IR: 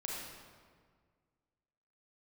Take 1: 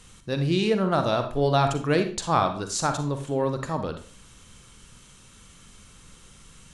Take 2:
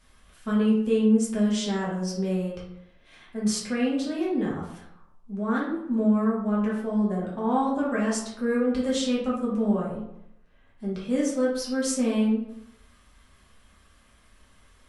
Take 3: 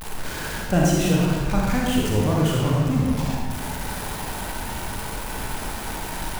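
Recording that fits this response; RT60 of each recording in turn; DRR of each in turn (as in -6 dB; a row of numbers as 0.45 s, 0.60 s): 3; 0.45 s, 0.80 s, 1.8 s; 7.0 dB, -6.0 dB, -3.5 dB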